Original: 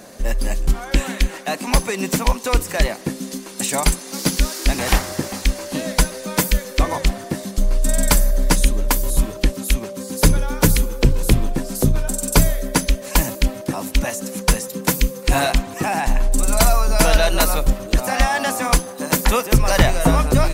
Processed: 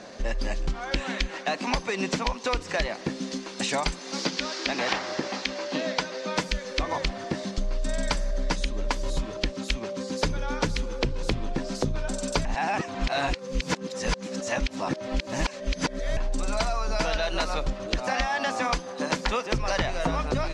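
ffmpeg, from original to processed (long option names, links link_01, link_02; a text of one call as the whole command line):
ffmpeg -i in.wav -filter_complex "[0:a]asettb=1/sr,asplit=3[link_01][link_02][link_03];[link_01]atrim=end=4.254[link_04];[link_02]atrim=start=4.25:end=6.36,asetpts=PTS-STARTPTS,afade=type=in:duration=0.004:curve=qsin,afade=type=out:start_time=2.106:duration=0.004:curve=qsin,highpass=210,lowpass=6200[link_05];[link_03]atrim=start=6.356[link_06];[link_04][link_05]acrossfade=duration=0.004:curve1=hsin:curve2=qsin[link_07];[link_07][link_06]acrossfade=duration=0.004:curve1=qsin:curve2=hsin,asplit=3[link_08][link_09][link_10];[link_08]atrim=end=12.452[link_11];[link_09]atrim=start=12.448:end=16.172,asetpts=PTS-STARTPTS,areverse[link_12];[link_10]atrim=start=16.168[link_13];[link_11][link_12]acrossfade=duration=0.004:curve1=hsin:curve2=hsin[link_14];[link_14][link_13]acrossfade=duration=0.004:curve1=hsin:curve2=hsin,lowpass=frequency=5700:width=0.5412,lowpass=frequency=5700:width=1.3066,lowshelf=frequency=270:gain=-6,acompressor=threshold=-23dB:ratio=6" out.wav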